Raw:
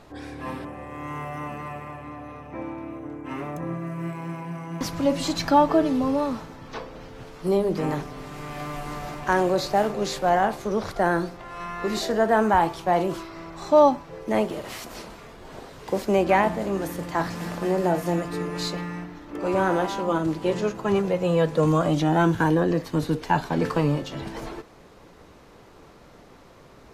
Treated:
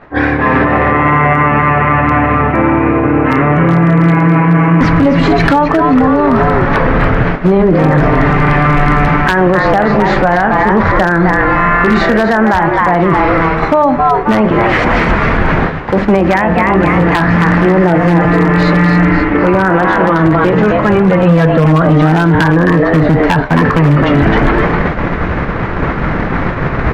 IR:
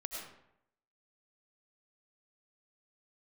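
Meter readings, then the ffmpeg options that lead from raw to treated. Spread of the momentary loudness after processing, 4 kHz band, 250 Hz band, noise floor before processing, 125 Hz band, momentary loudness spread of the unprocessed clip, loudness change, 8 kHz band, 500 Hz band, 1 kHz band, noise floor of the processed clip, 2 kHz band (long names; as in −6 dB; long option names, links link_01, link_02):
3 LU, +9.5 dB, +16.5 dB, −50 dBFS, +19.5 dB, 17 LU, +14.5 dB, can't be measured, +12.5 dB, +14.5 dB, −16 dBFS, +20.0 dB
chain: -filter_complex "[0:a]areverse,acompressor=mode=upward:threshold=-24dB:ratio=2.5,areverse,lowpass=frequency=1800:width_type=q:width=2.2,bandreject=frequency=100.1:width_type=h:width=4,bandreject=frequency=200.2:width_type=h:width=4,bandreject=frequency=300.3:width_type=h:width=4,bandreject=frequency=400.4:width_type=h:width=4,bandreject=frequency=500.5:width_type=h:width=4,bandreject=frequency=600.6:width_type=h:width=4,bandreject=frequency=700.7:width_type=h:width=4,asplit=2[link_01][link_02];[link_02]asplit=4[link_03][link_04][link_05][link_06];[link_03]adelay=264,afreqshift=140,volume=-6.5dB[link_07];[link_04]adelay=528,afreqshift=280,volume=-15.4dB[link_08];[link_05]adelay=792,afreqshift=420,volume=-24.2dB[link_09];[link_06]adelay=1056,afreqshift=560,volume=-33.1dB[link_10];[link_07][link_08][link_09][link_10]amix=inputs=4:normalize=0[link_11];[link_01][link_11]amix=inputs=2:normalize=0,acompressor=threshold=-23dB:ratio=8,asubboost=boost=2.5:cutoff=250,aeval=exprs='0.126*(abs(mod(val(0)/0.126+3,4)-2)-1)':channel_layout=same,lowshelf=frequency=110:gain=-2.5,agate=range=-33dB:threshold=-24dB:ratio=3:detection=peak,alimiter=level_in=29.5dB:limit=-1dB:release=50:level=0:latency=1,volume=-1dB"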